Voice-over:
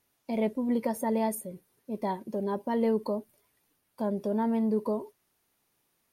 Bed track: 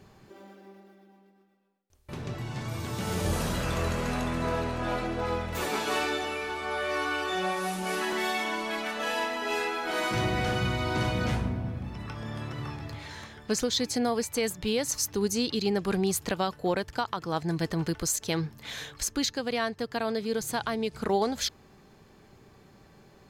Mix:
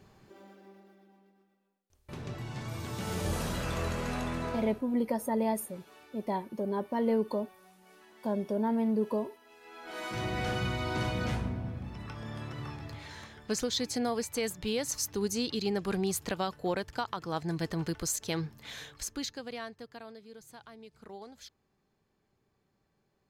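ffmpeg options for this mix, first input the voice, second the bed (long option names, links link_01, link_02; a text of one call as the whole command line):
ffmpeg -i stem1.wav -i stem2.wav -filter_complex "[0:a]adelay=4250,volume=-1.5dB[link_01];[1:a]volume=20dB,afade=type=out:start_time=4.36:duration=0.48:silence=0.0630957,afade=type=in:start_time=9.61:duration=0.87:silence=0.0630957,afade=type=out:start_time=18.4:duration=1.81:silence=0.149624[link_02];[link_01][link_02]amix=inputs=2:normalize=0" out.wav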